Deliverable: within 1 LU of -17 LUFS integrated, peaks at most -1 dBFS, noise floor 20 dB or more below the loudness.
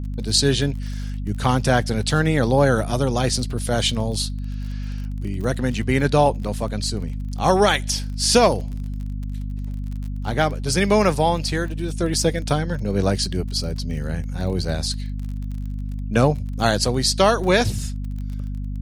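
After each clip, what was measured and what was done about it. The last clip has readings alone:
tick rate 33 per s; hum 50 Hz; highest harmonic 250 Hz; hum level -25 dBFS; loudness -22.0 LUFS; peak level -2.5 dBFS; loudness target -17.0 LUFS
-> de-click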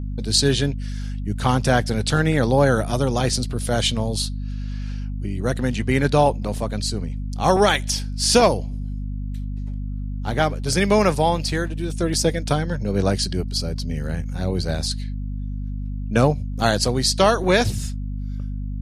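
tick rate 0 per s; hum 50 Hz; highest harmonic 250 Hz; hum level -25 dBFS
-> hum notches 50/100/150/200/250 Hz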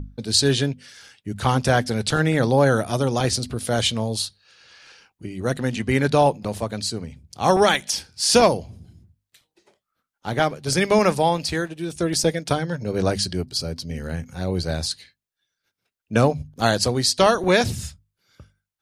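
hum not found; loudness -21.5 LUFS; peak level -3.5 dBFS; loudness target -17.0 LUFS
-> trim +4.5 dB; peak limiter -1 dBFS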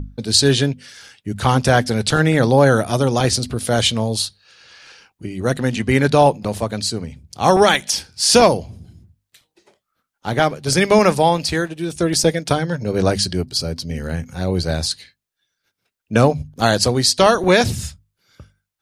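loudness -17.5 LUFS; peak level -1.0 dBFS; noise floor -79 dBFS

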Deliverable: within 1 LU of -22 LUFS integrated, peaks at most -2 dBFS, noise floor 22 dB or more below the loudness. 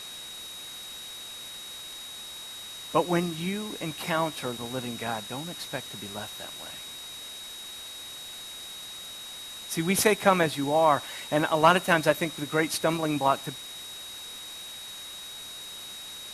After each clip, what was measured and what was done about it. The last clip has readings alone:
steady tone 3.8 kHz; tone level -40 dBFS; noise floor -41 dBFS; noise floor target -52 dBFS; loudness -29.5 LUFS; peak level -5.0 dBFS; loudness target -22.0 LUFS
-> band-stop 3.8 kHz, Q 30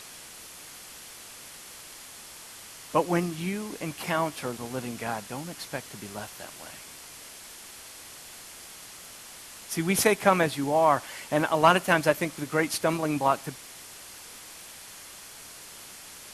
steady tone not found; noise floor -46 dBFS; noise floor target -49 dBFS
-> noise print and reduce 6 dB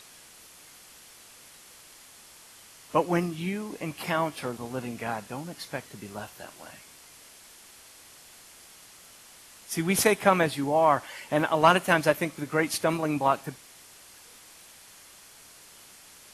noise floor -52 dBFS; loudness -26.5 LUFS; peak level -5.0 dBFS; loudness target -22.0 LUFS
-> trim +4.5 dB; peak limiter -2 dBFS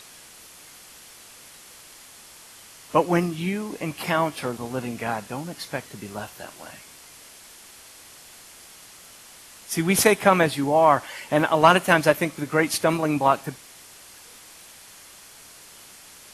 loudness -22.0 LUFS; peak level -2.0 dBFS; noise floor -47 dBFS

